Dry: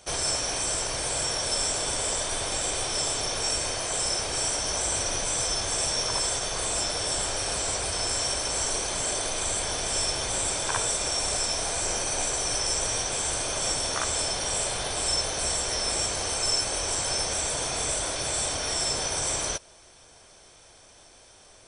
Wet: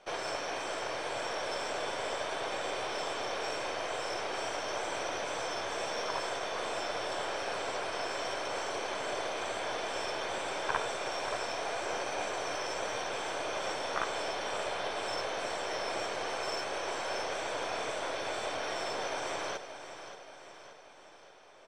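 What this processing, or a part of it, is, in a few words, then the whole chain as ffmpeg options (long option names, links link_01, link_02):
crystal radio: -af "highpass=340,lowpass=2500,aeval=exprs='if(lt(val(0),0),0.708*val(0),val(0))':channel_layout=same,equalizer=frequency=110:width=4.1:gain=5.5,aecho=1:1:578|1156|1734|2312|2890|3468:0.282|0.149|0.0792|0.042|0.0222|0.0118"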